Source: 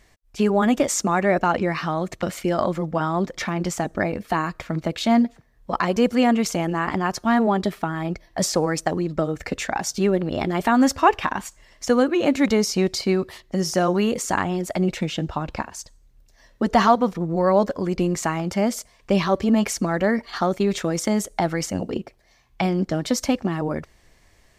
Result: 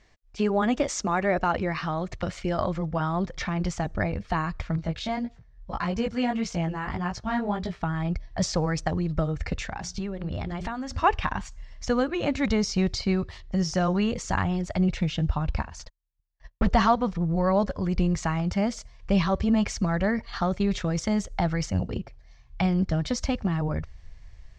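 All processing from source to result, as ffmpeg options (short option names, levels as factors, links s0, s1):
-filter_complex "[0:a]asettb=1/sr,asplit=3[s0][s1][s2];[s0]atrim=end=4.764[s3];[s1]atrim=start=4.76:end=7.81,asetpts=PTS-STARTPTS,afade=t=in:d=0.004:c=qsin,afade=t=out:st=3.046:d=0.004:c=qsin,bandreject=f=1200:w=24,flanger=delay=17:depth=3.3:speed=1.7[s4];[s2]atrim=start=7.806[s5];[s3][s4]acrossfade=d=0.004:c1=hsin:c2=qsin[s6];[s6][s5]acrossfade=d=0.004:c1=qsin:c2=hsin,asettb=1/sr,asplit=3[s7][s8][s9];[s7]atrim=end=9.574[s10];[s8]atrim=start=9.57:end=11.04,asetpts=PTS-STARTPTS,afade=t=in:d=0.004:c=qsin,afade=t=out:st=1.466:d=0.004:c=qsin,bandreject=f=60:t=h:w=6,bandreject=f=120:t=h:w=6,bandreject=f=180:t=h:w=6,bandreject=f=240:t=h:w=6,bandreject=f=300:t=h:w=6,bandreject=f=360:t=h:w=6,bandreject=f=420:t=h:w=6,acompressor=threshold=0.0562:ratio=4:attack=3.2:release=140:knee=1:detection=peak[s11];[s9]atrim=start=11.036[s12];[s10][s11]acrossfade=d=0.004:c1=hsin:c2=qsin[s13];[s13][s12]acrossfade=d=0.004:c1=qsin:c2=hsin,asettb=1/sr,asplit=3[s14][s15][s16];[s14]atrim=end=15.794[s17];[s15]atrim=start=15.79:end=16.69,asetpts=PTS-STARTPTS,afade=t=in:d=0.004:c=qsin,afade=t=out:st=0.896:d=0.004:c=qsin,asubboost=boost=11.5:cutoff=140,asplit=2[s18][s19];[s19]highpass=f=720:p=1,volume=14.1,asoftclip=type=tanh:threshold=0.266[s20];[s18][s20]amix=inputs=2:normalize=0,lowpass=f=1200:p=1,volume=0.501,agate=range=0.00501:threshold=0.00794:ratio=16:release=100:detection=peak[s21];[s16]atrim=start=16.686[s22];[s17][s21]acrossfade=d=0.004:c1=hsin:c2=qsin[s23];[s23][s22]acrossfade=d=0.004:c1=qsin:c2=hsin,lowpass=f=6400:w=0.5412,lowpass=f=6400:w=1.3066,asubboost=boost=9:cutoff=100,volume=0.631"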